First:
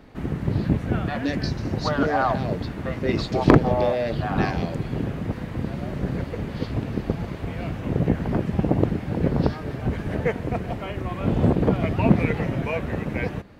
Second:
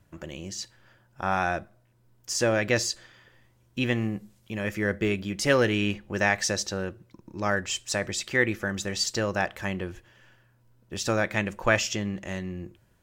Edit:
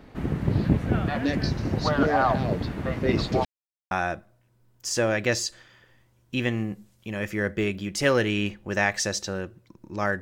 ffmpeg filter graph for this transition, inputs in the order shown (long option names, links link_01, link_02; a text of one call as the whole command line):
ffmpeg -i cue0.wav -i cue1.wav -filter_complex "[0:a]apad=whole_dur=10.21,atrim=end=10.21,asplit=2[link_01][link_02];[link_01]atrim=end=3.45,asetpts=PTS-STARTPTS,afade=type=out:start_time=3.446:duration=0.004:curve=hsin[link_03];[link_02]atrim=start=3.45:end=3.91,asetpts=PTS-STARTPTS,volume=0[link_04];[1:a]atrim=start=1.35:end=7.65,asetpts=PTS-STARTPTS,afade=type=in:duration=0.004:curve=hsin[link_05];[link_03][link_04][link_05]concat=n=3:v=0:a=1" out.wav